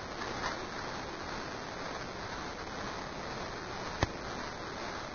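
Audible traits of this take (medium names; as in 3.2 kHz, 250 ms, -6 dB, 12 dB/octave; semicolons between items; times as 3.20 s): a quantiser's noise floor 6-bit, dither triangular; phasing stages 6, 2 Hz, lowest notch 110–2300 Hz; aliases and images of a low sample rate 2.9 kHz, jitter 20%; Vorbis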